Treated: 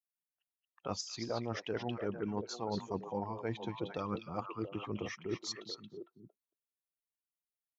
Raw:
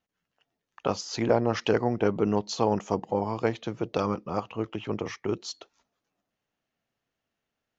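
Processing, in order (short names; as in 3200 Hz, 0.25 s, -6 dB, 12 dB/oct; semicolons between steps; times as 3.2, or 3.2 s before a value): per-bin expansion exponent 1.5; reverse; compressor, threshold -34 dBFS, peak gain reduction 15 dB; reverse; delay with a stepping band-pass 0.227 s, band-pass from 3300 Hz, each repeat -1.4 oct, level -1 dB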